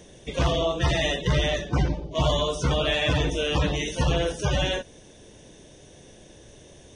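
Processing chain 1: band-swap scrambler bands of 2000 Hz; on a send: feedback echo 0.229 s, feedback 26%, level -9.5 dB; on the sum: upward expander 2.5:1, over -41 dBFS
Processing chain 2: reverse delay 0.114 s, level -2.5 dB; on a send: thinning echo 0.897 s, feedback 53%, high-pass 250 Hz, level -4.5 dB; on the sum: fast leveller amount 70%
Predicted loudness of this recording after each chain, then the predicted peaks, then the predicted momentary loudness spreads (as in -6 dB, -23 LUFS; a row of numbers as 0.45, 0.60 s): -25.5, -18.5 LUFS; -10.5, -6.0 dBFS; 4, 3 LU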